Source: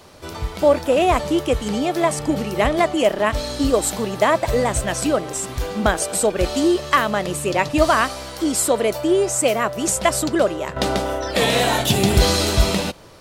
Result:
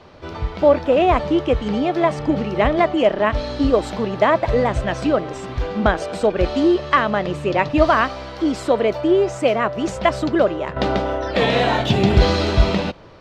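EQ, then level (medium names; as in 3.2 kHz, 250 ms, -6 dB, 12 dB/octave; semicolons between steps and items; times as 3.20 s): distance through air 220 m; +2.0 dB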